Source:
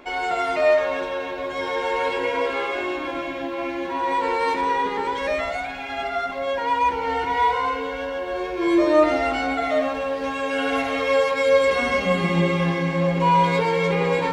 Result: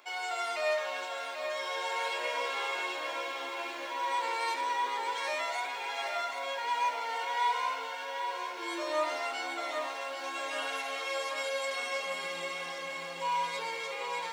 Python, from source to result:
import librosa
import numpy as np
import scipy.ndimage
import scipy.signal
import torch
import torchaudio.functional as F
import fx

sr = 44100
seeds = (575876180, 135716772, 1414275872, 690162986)

p1 = fx.rider(x, sr, range_db=10, speed_s=2.0)
p2 = scipy.signal.sosfilt(scipy.signal.butter(2, 1300.0, 'highpass', fs=sr, output='sos'), p1)
p3 = fx.peak_eq(p2, sr, hz=1900.0, db=-10.0, octaves=2.1)
y = p3 + fx.echo_feedback(p3, sr, ms=788, feedback_pct=56, wet_db=-7.5, dry=0)